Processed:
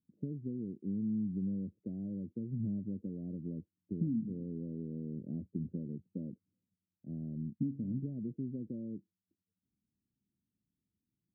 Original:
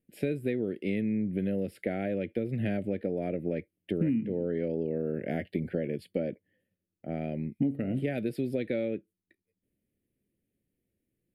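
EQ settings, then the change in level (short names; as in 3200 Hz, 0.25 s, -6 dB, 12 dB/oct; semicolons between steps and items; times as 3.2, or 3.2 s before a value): HPF 50 Hz; ladder low-pass 300 Hz, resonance 25%; 0.0 dB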